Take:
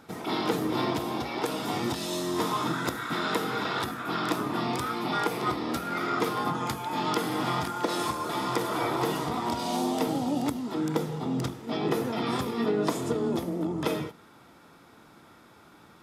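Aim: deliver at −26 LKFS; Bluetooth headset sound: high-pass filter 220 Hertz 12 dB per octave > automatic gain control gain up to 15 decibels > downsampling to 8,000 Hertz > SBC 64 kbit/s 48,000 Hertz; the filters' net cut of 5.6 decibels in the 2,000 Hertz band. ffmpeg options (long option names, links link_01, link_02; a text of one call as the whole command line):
ffmpeg -i in.wav -af "highpass=220,equalizer=frequency=2000:width_type=o:gain=-8,dynaudnorm=maxgain=15dB,aresample=8000,aresample=44100,volume=3dB" -ar 48000 -c:a sbc -b:a 64k out.sbc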